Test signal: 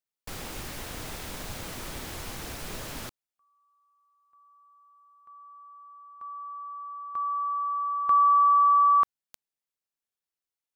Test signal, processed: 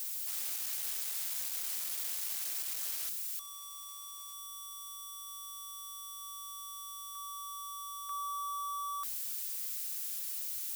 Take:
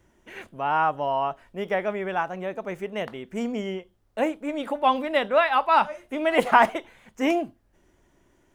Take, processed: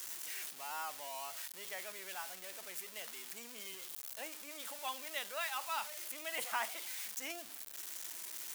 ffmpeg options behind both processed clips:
ffmpeg -i in.wav -af "aeval=exprs='val(0)+0.5*0.0398*sgn(val(0))':channel_layout=same,aderivative,volume=-5dB" out.wav

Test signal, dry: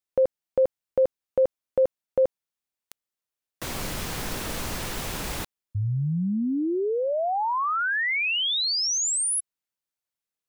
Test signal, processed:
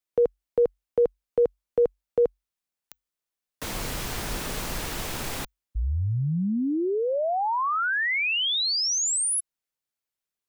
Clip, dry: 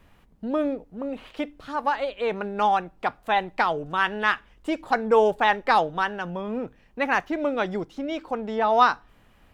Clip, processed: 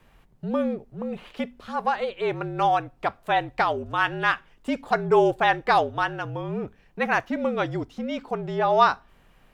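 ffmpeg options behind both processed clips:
ffmpeg -i in.wav -af "afreqshift=-48" out.wav

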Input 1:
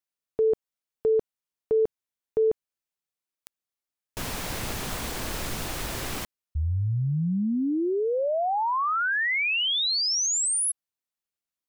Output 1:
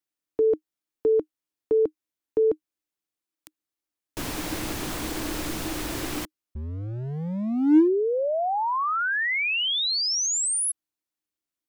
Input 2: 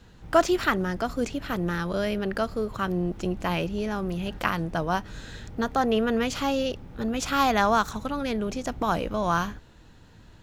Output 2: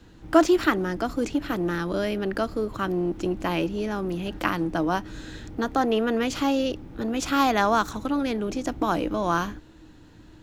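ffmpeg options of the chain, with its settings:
ffmpeg -i in.wav -filter_complex "[0:a]equalizer=frequency=310:width_type=o:width=0.29:gain=14.5,acrossover=split=260[link_01][link_02];[link_01]volume=31.5dB,asoftclip=hard,volume=-31.5dB[link_03];[link_03][link_02]amix=inputs=2:normalize=0" out.wav

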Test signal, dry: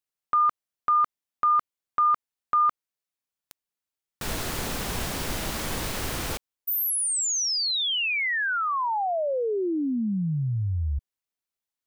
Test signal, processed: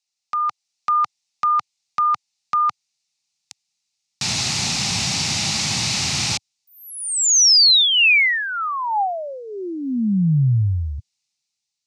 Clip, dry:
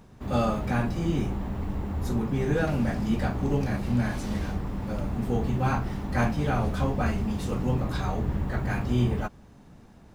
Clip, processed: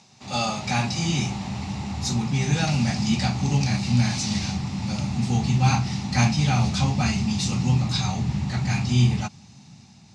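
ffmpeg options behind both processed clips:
ffmpeg -i in.wav -filter_complex "[0:a]acrossover=split=2700[link_01][link_02];[link_02]acompressor=threshold=-35dB:ratio=4:attack=1:release=60[link_03];[link_01][link_03]amix=inputs=2:normalize=0,asubboost=boost=5:cutoff=210,dynaudnorm=framelen=170:gausssize=7:maxgain=5dB,highpass=frequency=110:width=0.5412,highpass=frequency=110:width=1.3066,equalizer=frequency=300:width_type=q:width=4:gain=-5,equalizer=frequency=470:width_type=q:width=4:gain=-7,equalizer=frequency=810:width_type=q:width=4:gain=10,equalizer=frequency=1300:width_type=q:width=4:gain=4,equalizer=frequency=3200:width_type=q:width=4:gain=-8,lowpass=frequency=6400:width=0.5412,lowpass=frequency=6400:width=1.3066,aexciter=amount=12.2:drive=2.5:freq=2300,volume=-4.5dB" out.wav

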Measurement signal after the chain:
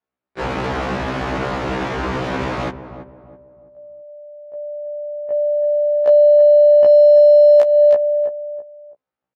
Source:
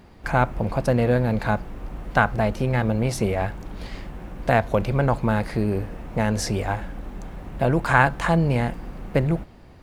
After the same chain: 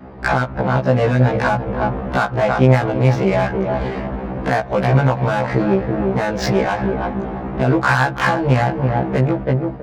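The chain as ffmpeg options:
ffmpeg -i in.wav -filter_complex "[0:a]asplit=2[link_01][link_02];[link_02]adelay=329,lowpass=frequency=1400:poles=1,volume=-10dB,asplit=2[link_03][link_04];[link_04]adelay=329,lowpass=frequency=1400:poles=1,volume=0.35,asplit=2[link_05][link_06];[link_06]adelay=329,lowpass=frequency=1400:poles=1,volume=0.35,asplit=2[link_07][link_08];[link_08]adelay=329,lowpass=frequency=1400:poles=1,volume=0.35[link_09];[link_01][link_03][link_05][link_07][link_09]amix=inputs=5:normalize=0,aeval=exprs='clip(val(0),-1,0.335)':channel_layout=same,highpass=76,equalizer=frequency=120:width=0.49:gain=-4.5,aresample=16000,aresample=44100,adynamicsmooth=sensitivity=2.5:basefreq=1200,adynamicequalizer=threshold=0.0158:dfrequency=390:dqfactor=2:tfrequency=390:tqfactor=2:attack=5:release=100:ratio=0.375:range=2.5:mode=cutabove:tftype=bell,acompressor=threshold=-27dB:ratio=12,alimiter=level_in=21.5dB:limit=-1dB:release=50:level=0:latency=1,afftfilt=real='re*1.73*eq(mod(b,3),0)':imag='im*1.73*eq(mod(b,3),0)':win_size=2048:overlap=0.75,volume=-2dB" out.wav

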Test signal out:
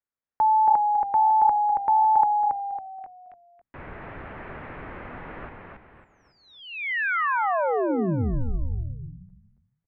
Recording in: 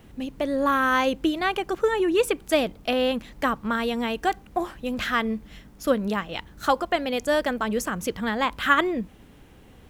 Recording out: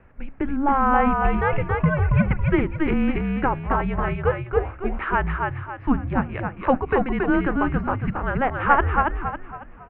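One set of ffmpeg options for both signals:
ffmpeg -i in.wav -filter_complex "[0:a]bandreject=frequency=68.64:width_type=h:width=4,bandreject=frequency=137.28:width_type=h:width=4,bandreject=frequency=205.92:width_type=h:width=4,bandreject=frequency=274.56:width_type=h:width=4,bandreject=frequency=343.2:width_type=h:width=4,bandreject=frequency=411.84:width_type=h:width=4,bandreject=frequency=480.48:width_type=h:width=4,bandreject=frequency=549.12:width_type=h:width=4,bandreject=frequency=617.76:width_type=h:width=4,asplit=6[link_01][link_02][link_03][link_04][link_05][link_06];[link_02]adelay=276,afreqshift=-35,volume=-3.5dB[link_07];[link_03]adelay=552,afreqshift=-70,volume=-11.9dB[link_08];[link_04]adelay=828,afreqshift=-105,volume=-20.3dB[link_09];[link_05]adelay=1104,afreqshift=-140,volume=-28.7dB[link_10];[link_06]adelay=1380,afreqshift=-175,volume=-37.1dB[link_11];[link_01][link_07][link_08][link_09][link_10][link_11]amix=inputs=6:normalize=0,highpass=frequency=210:width_type=q:width=0.5412,highpass=frequency=210:width_type=q:width=1.307,lowpass=frequency=2400:width_type=q:width=0.5176,lowpass=frequency=2400:width_type=q:width=0.7071,lowpass=frequency=2400:width_type=q:width=1.932,afreqshift=-280,volume=2.5dB" out.wav

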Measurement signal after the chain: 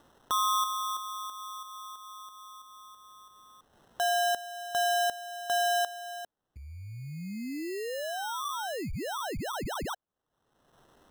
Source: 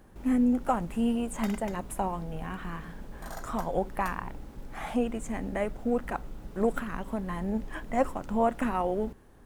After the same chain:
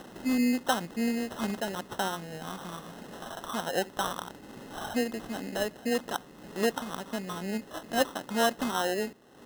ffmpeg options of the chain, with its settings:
ffmpeg -i in.wav -af "highpass=210,acompressor=mode=upward:threshold=-36dB:ratio=2.5,acrusher=samples=19:mix=1:aa=0.000001" out.wav

